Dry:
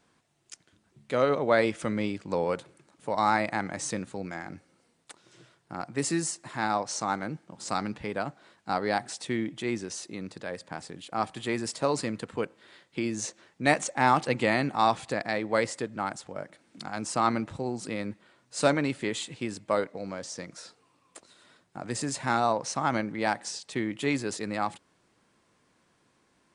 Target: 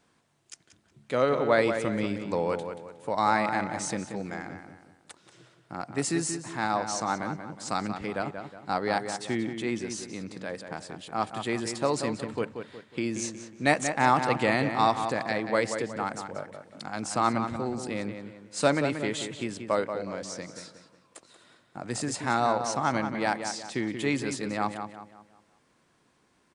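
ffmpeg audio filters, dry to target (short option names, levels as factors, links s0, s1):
-filter_complex "[0:a]asplit=2[s0][s1];[s1]adelay=182,lowpass=f=3200:p=1,volume=0.422,asplit=2[s2][s3];[s3]adelay=182,lowpass=f=3200:p=1,volume=0.41,asplit=2[s4][s5];[s5]adelay=182,lowpass=f=3200:p=1,volume=0.41,asplit=2[s6][s7];[s7]adelay=182,lowpass=f=3200:p=1,volume=0.41,asplit=2[s8][s9];[s9]adelay=182,lowpass=f=3200:p=1,volume=0.41[s10];[s0][s2][s4][s6][s8][s10]amix=inputs=6:normalize=0"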